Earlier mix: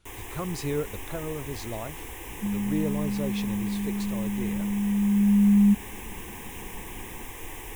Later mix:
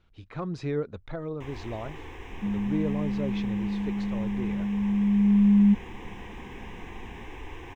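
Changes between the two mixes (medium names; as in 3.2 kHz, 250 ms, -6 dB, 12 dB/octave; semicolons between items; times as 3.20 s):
first sound: entry +1.35 s; master: add distance through air 200 m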